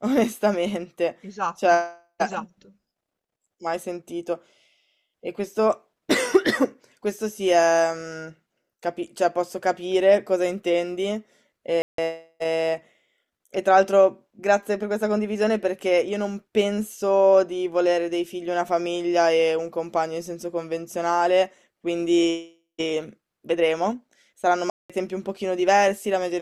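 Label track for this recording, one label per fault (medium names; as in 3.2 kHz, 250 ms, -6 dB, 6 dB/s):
11.820000	11.980000	dropout 163 ms
24.700000	24.900000	dropout 196 ms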